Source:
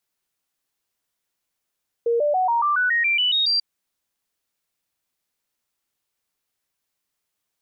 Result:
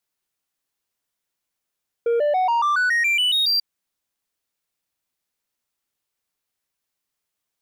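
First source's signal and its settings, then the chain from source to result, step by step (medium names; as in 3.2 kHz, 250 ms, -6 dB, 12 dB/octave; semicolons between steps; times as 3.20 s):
stepped sine 468 Hz up, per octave 3, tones 11, 0.14 s, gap 0.00 s -17 dBFS
waveshaping leveller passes 1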